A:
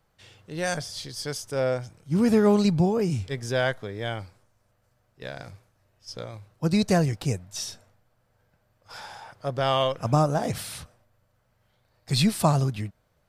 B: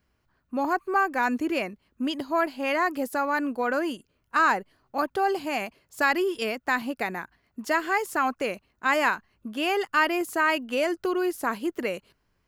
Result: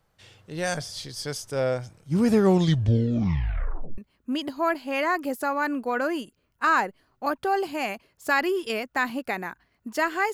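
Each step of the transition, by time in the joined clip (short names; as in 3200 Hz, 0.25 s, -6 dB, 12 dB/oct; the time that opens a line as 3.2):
A
2.36 tape stop 1.62 s
3.98 switch to B from 1.7 s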